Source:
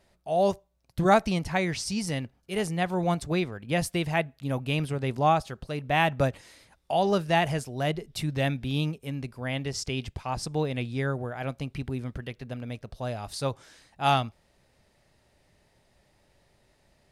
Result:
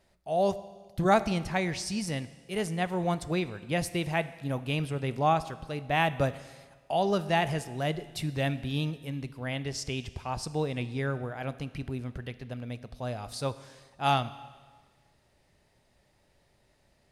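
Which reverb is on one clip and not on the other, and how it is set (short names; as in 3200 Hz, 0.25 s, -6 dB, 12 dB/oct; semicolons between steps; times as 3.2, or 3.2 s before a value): Schroeder reverb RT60 1.5 s, combs from 25 ms, DRR 14.5 dB; gain -2.5 dB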